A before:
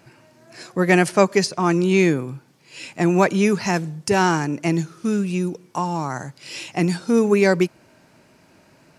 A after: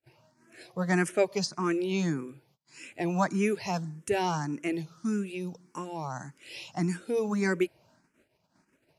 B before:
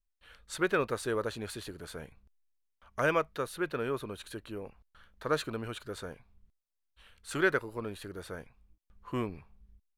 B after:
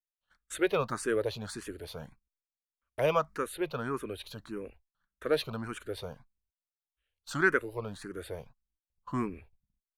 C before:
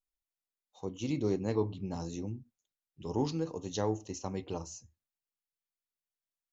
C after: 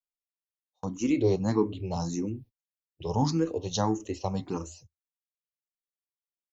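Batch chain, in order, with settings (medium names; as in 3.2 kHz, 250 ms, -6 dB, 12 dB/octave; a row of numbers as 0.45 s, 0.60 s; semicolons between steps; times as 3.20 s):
gate -52 dBFS, range -28 dB; barber-pole phaser +1.7 Hz; peak normalisation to -12 dBFS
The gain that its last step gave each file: -7.0 dB, +4.0 dB, +9.5 dB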